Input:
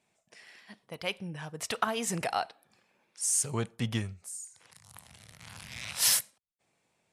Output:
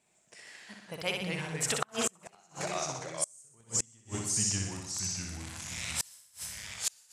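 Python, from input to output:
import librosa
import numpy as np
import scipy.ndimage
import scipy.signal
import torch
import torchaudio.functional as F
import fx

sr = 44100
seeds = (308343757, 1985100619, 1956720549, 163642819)

y = fx.peak_eq(x, sr, hz=7700.0, db=9.5, octaves=0.45)
y = fx.echo_pitch(y, sr, ms=105, semitones=-2, count=3, db_per_echo=-6.0)
y = fx.room_flutter(y, sr, wall_m=10.6, rt60_s=0.85)
y = fx.gate_flip(y, sr, shuts_db=-17.0, range_db=-34)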